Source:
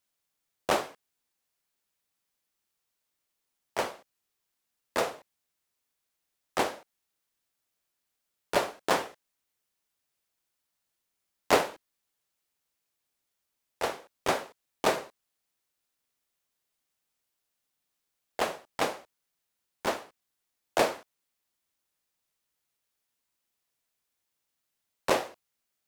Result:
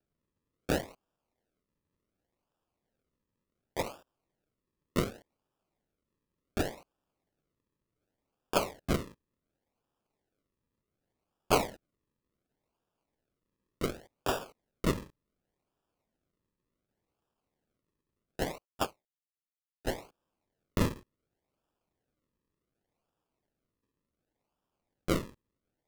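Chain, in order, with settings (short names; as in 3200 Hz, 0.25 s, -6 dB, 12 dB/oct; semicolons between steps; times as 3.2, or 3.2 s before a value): decimation with a swept rate 41×, swing 100% 0.68 Hz; 18.58–19.87 upward expander 2.5:1, over -46 dBFS; gain -3 dB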